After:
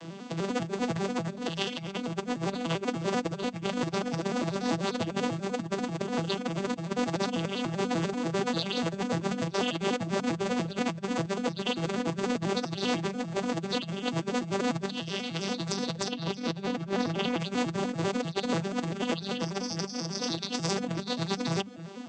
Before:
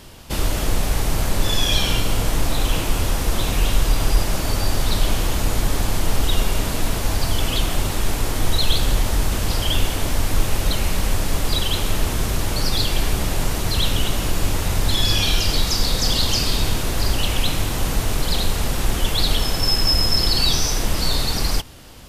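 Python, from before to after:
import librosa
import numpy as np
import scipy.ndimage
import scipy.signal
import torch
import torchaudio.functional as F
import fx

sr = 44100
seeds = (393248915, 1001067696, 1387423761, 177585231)

y = fx.vocoder_arp(x, sr, chord='minor triad', root=52, every_ms=98)
y = fx.air_absorb(y, sr, metres=82.0, at=(16.11, 17.4))
y = fx.over_compress(y, sr, threshold_db=-29.0, ratio=-0.5)
y = fx.dereverb_blind(y, sr, rt60_s=0.54)
y = fx.hum_notches(y, sr, base_hz=50, count=4)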